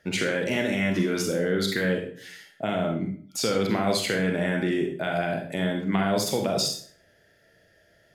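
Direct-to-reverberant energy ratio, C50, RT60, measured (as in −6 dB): 1.5 dB, 5.5 dB, 0.50 s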